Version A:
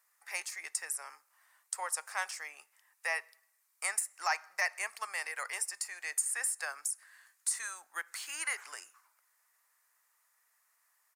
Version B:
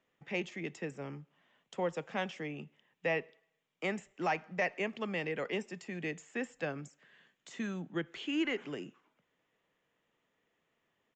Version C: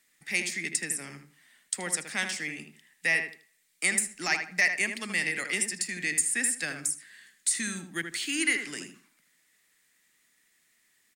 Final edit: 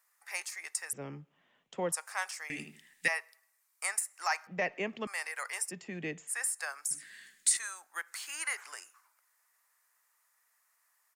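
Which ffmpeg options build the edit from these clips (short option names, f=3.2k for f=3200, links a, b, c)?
-filter_complex "[1:a]asplit=3[a][b][c];[2:a]asplit=2[d][e];[0:a]asplit=6[f][g][h][i][j][k];[f]atrim=end=0.932[l];[a]atrim=start=0.928:end=1.922[m];[g]atrim=start=1.918:end=2.502[n];[d]atrim=start=2.498:end=3.082[o];[h]atrim=start=3.078:end=4.472[p];[b]atrim=start=4.468:end=5.072[q];[i]atrim=start=5.068:end=5.72[r];[c]atrim=start=5.68:end=6.31[s];[j]atrim=start=6.27:end=6.912[t];[e]atrim=start=6.908:end=7.572[u];[k]atrim=start=7.568[v];[l][m]acrossfade=d=0.004:c1=hsin:c2=hsin[w];[w][n]acrossfade=d=0.004:c1=hsin:c2=hsin[x];[x][o]acrossfade=d=0.004:c1=hsin:c2=hsin[y];[y][p]acrossfade=d=0.004:c1=hsin:c2=hsin[z];[z][q]acrossfade=d=0.004:c1=hsin:c2=hsin[aa];[aa][r]acrossfade=d=0.004:c1=hsin:c2=hsin[ab];[ab][s]acrossfade=d=0.04:c1=tri:c2=tri[ac];[ac][t]acrossfade=d=0.04:c1=tri:c2=tri[ad];[ad][u]acrossfade=d=0.004:c1=hsin:c2=hsin[ae];[ae][v]acrossfade=d=0.004:c1=hsin:c2=hsin"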